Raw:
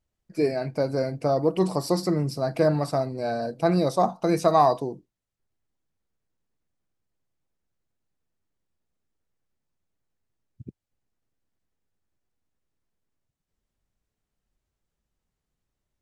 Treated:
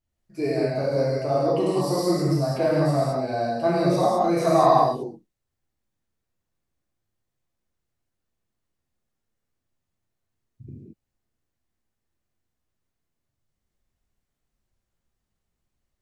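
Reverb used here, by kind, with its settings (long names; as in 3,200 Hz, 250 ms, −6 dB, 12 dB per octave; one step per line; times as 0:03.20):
reverb whose tail is shaped and stops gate 250 ms flat, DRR −7.5 dB
level −6 dB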